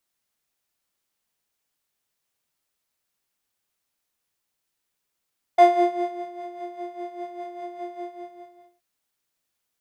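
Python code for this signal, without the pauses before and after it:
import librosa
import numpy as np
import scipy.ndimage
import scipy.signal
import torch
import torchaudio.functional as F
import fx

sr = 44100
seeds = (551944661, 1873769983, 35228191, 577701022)

y = fx.sub_patch_tremolo(sr, seeds[0], note=77, wave='square', wave2='saw', interval_st=-12, detune_cents=29, level2_db=-3.5, sub_db=-15.0, noise_db=-20, kind='bandpass', cutoff_hz=120.0, q=0.9, env_oct=2.5, env_decay_s=0.33, env_sustain_pct=40, attack_ms=5.4, decay_s=0.66, sustain_db=-15, release_s=0.82, note_s=2.41, lfo_hz=5.0, tremolo_db=9)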